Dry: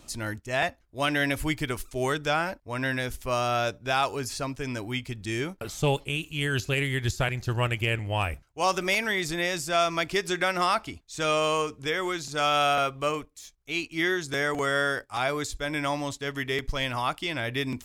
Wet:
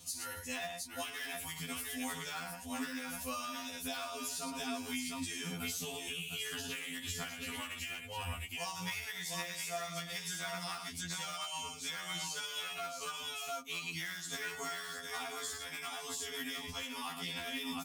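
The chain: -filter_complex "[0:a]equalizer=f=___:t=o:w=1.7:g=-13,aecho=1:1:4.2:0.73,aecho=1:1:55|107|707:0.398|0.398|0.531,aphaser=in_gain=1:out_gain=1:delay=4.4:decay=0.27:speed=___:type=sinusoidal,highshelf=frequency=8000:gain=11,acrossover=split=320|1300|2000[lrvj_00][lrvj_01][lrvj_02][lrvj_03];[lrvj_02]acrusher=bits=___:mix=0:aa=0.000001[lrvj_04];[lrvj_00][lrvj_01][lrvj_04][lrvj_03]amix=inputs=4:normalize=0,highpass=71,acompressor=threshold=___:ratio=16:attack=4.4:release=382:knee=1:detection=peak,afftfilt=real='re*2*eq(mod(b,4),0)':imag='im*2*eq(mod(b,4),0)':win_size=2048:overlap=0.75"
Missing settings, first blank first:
410, 1.8, 4, -32dB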